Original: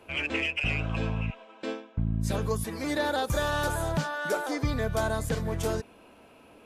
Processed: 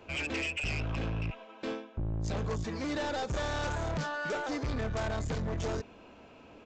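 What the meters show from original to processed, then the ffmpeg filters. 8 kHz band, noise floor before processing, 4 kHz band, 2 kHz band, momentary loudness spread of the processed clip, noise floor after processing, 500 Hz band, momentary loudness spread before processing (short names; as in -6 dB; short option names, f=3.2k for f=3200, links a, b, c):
-7.0 dB, -55 dBFS, -4.5 dB, -5.0 dB, 7 LU, -54 dBFS, -5.5 dB, 7 LU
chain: -af "lowshelf=f=180:g=4.5,aresample=16000,asoftclip=type=tanh:threshold=-30dB,aresample=44100"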